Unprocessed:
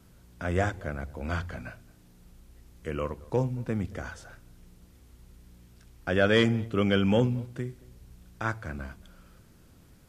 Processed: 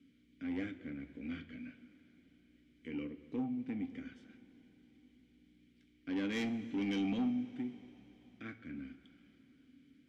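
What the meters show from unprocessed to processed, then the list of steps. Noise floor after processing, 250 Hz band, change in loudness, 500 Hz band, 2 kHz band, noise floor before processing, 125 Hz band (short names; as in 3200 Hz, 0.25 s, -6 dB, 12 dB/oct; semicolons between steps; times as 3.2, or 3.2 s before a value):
-68 dBFS, -6.0 dB, -11.0 dB, -19.5 dB, -15.0 dB, -57 dBFS, -20.0 dB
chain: dynamic EQ 6900 Hz, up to -7 dB, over -54 dBFS, Q 0.72; vowel filter i; soft clip -35.5 dBFS, distortion -12 dB; two-slope reverb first 0.22 s, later 4.3 s, from -19 dB, DRR 7 dB; gain +3.5 dB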